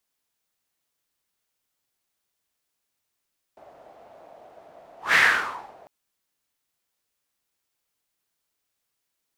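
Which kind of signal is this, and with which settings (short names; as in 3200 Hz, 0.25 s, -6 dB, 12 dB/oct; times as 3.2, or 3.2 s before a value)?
whoosh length 2.30 s, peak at 1.58, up 0.17 s, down 0.70 s, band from 660 Hz, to 1900 Hz, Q 4.4, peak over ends 33 dB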